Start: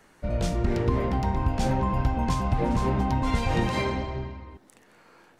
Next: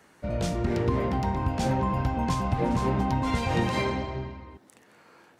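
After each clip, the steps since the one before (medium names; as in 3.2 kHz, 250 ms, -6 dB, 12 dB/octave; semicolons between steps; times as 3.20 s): high-pass 73 Hz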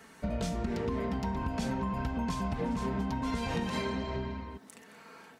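peaking EQ 570 Hz -2.5 dB 1.6 oct; comb 4.5 ms, depth 61%; compression 6:1, threshold -33 dBFS, peak gain reduction 12 dB; trim +3 dB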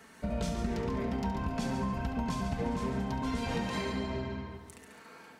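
multi-head delay 70 ms, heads first and second, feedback 46%, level -10 dB; trim -1 dB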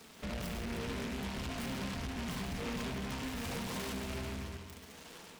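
saturation -36 dBFS, distortion -9 dB; spring tank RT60 1.4 s, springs 59 ms, chirp 25 ms, DRR 8.5 dB; delay time shaken by noise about 1.8 kHz, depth 0.19 ms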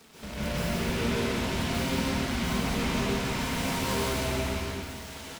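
on a send: delay 174 ms -5 dB; on the sum: plate-style reverb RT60 1.3 s, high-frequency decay 1×, pre-delay 120 ms, DRR -9 dB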